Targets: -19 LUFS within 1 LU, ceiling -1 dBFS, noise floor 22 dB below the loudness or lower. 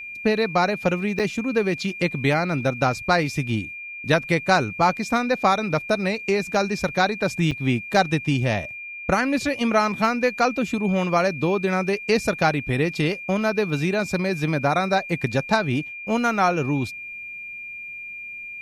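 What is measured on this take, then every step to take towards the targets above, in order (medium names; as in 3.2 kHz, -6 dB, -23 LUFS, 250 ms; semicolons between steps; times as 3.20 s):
dropouts 2; longest dropout 6.8 ms; steady tone 2.4 kHz; tone level -33 dBFS; loudness -22.5 LUFS; peak level -5.5 dBFS; loudness target -19.0 LUFS
-> interpolate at 1.19/7.51 s, 6.8 ms; band-stop 2.4 kHz, Q 30; trim +3.5 dB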